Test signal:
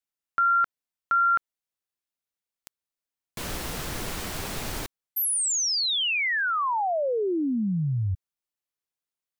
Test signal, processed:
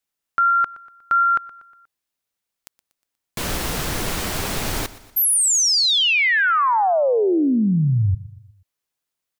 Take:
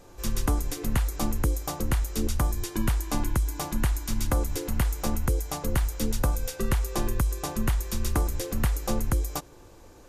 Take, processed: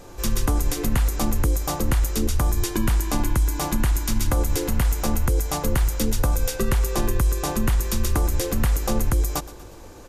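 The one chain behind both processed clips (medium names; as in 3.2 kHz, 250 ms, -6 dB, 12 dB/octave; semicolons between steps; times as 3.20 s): peak limiter -21 dBFS; on a send: feedback delay 120 ms, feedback 50%, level -18 dB; on the sum: trim +8 dB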